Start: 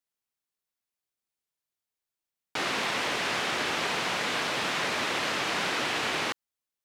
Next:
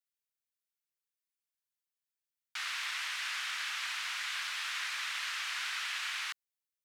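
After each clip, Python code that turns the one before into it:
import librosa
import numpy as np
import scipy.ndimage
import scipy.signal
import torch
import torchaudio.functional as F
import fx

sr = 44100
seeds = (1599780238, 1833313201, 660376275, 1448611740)

y = scipy.signal.sosfilt(scipy.signal.butter(4, 1300.0, 'highpass', fs=sr, output='sos'), x)
y = fx.high_shelf(y, sr, hz=11000.0, db=4.0)
y = y * 10.0 ** (-6.0 / 20.0)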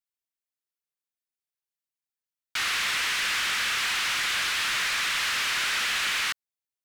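y = fx.leveller(x, sr, passes=3)
y = y * 10.0 ** (3.0 / 20.0)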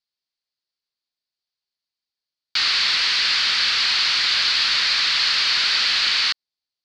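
y = fx.lowpass_res(x, sr, hz=4500.0, q=5.9)
y = y * 10.0 ** (1.5 / 20.0)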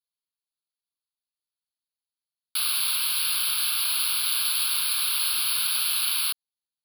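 y = fx.fixed_phaser(x, sr, hz=1900.0, stages=6)
y = (np.kron(scipy.signal.resample_poly(y, 1, 3), np.eye(3)[0]) * 3)[:len(y)]
y = y * 10.0 ** (-8.0 / 20.0)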